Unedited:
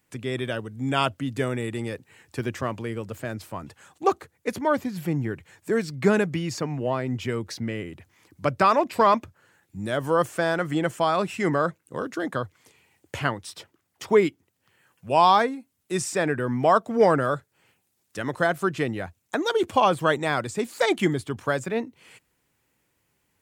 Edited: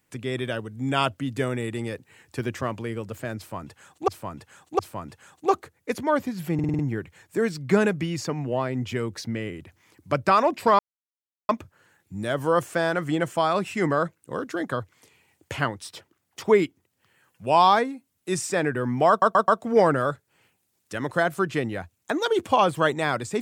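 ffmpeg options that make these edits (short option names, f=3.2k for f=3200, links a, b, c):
-filter_complex "[0:a]asplit=12[a][b][c][d][e][f][g][h][i][j][k][l];[a]atrim=end=4.082[m];[b]atrim=start=3.368:end=4.082[n];[c]atrim=start=3.368:end=5.172[o];[d]atrim=start=5.118:end=5.172[p];[e]atrim=start=5.118:end=5.172[q];[f]atrim=start=5.118:end=5.172[r];[g]atrim=start=5.118:end=5.172[s];[h]atrim=start=5.118:end=9.12,asetpts=PTS-STARTPTS,afade=t=out:st=3.998:d=0.004:c=hsin,apad=pad_dur=0.7[t];[i]atrim=start=9.12:end=16.852,asetpts=PTS-STARTPTS,afade=t=in:d=0.004:c=hsin[u];[j]atrim=start=16.718:end=16.852[v];[k]atrim=start=16.718:end=16.852[w];[l]atrim=start=16.718[x];[m][n]acrossfade=d=0.004:c1=hsin:c2=hsin[y];[y][o]acrossfade=d=0.004:c1=hsin:c2=hsin[z];[z][p]acrossfade=d=0.004:c1=hsin:c2=hsin[aa];[aa][q]acrossfade=d=0.004:c1=hsin:c2=hsin[ab];[ab][r]acrossfade=d=0.004:c1=hsin:c2=hsin[ac];[ac][s]acrossfade=d=0.004:c1=hsin:c2=hsin[ad];[t][u]concat=n=2:v=0:a=1[ae];[ad][ae]acrossfade=d=0.004:c1=hsin:c2=hsin[af];[af][v]acrossfade=d=0.004:c1=hsin:c2=hsin[ag];[ag][w]acrossfade=d=0.004:c1=hsin:c2=hsin[ah];[ah][x]acrossfade=d=0.004:c1=hsin:c2=hsin"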